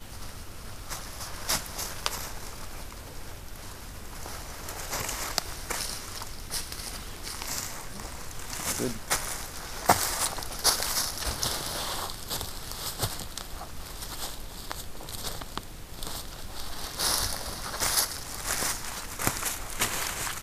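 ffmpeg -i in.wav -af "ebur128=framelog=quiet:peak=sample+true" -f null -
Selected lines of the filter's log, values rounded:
Integrated loudness:
  I:         -31.2 LUFS
  Threshold: -41.5 LUFS
Loudness range:
  LRA:         9.5 LU
  Threshold: -51.6 LUFS
  LRA low:   -37.3 LUFS
  LRA high:  -27.8 LUFS
Sample peak:
  Peak:       -3.5 dBFS
True peak:
  Peak:       -3.5 dBFS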